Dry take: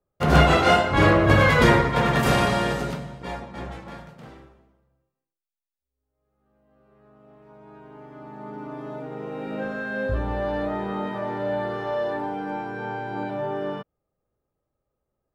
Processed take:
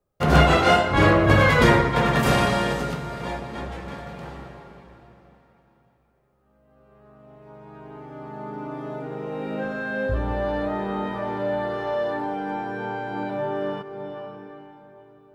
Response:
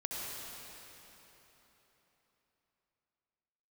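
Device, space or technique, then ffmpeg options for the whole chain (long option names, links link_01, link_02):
ducked reverb: -filter_complex "[0:a]asplit=3[link_01][link_02][link_03];[1:a]atrim=start_sample=2205[link_04];[link_02][link_04]afir=irnorm=-1:irlink=0[link_05];[link_03]apad=whole_len=676638[link_06];[link_05][link_06]sidechaincompress=threshold=-37dB:ratio=8:attack=22:release=446,volume=-3.5dB[link_07];[link_01][link_07]amix=inputs=2:normalize=0"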